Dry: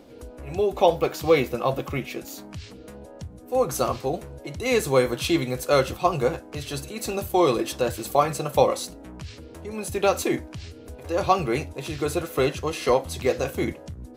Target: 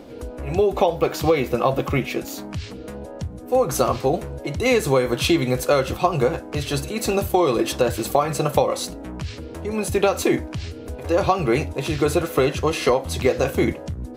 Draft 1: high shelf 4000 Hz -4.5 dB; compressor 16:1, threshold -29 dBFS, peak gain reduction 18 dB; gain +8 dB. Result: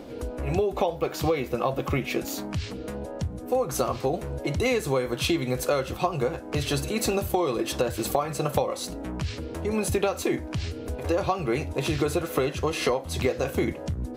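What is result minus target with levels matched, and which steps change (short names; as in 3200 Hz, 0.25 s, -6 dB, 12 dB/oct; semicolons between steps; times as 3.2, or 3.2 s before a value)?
compressor: peak gain reduction +7 dB
change: compressor 16:1, threshold -21.5 dBFS, peak gain reduction 11 dB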